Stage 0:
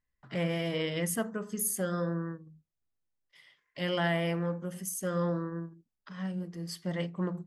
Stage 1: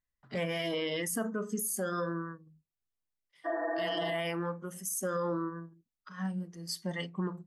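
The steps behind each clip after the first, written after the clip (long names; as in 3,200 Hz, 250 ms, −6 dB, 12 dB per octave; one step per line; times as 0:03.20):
healed spectral selection 0:03.48–0:04.12, 230–1,900 Hz after
noise reduction from a noise print of the clip's start 11 dB
brickwall limiter −30 dBFS, peak gain reduction 10 dB
level +5 dB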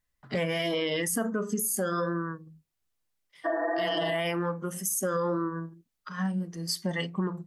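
downward compressor 2 to 1, threshold −37 dBFS, peak gain reduction 5 dB
tape wow and flutter 25 cents
level +8.5 dB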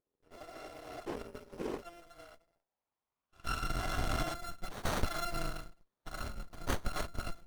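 samples in bit-reversed order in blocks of 256 samples
band-pass filter sweep 440 Hz → 4,600 Hz, 0:02.02–0:04.95
windowed peak hold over 17 samples
level +10.5 dB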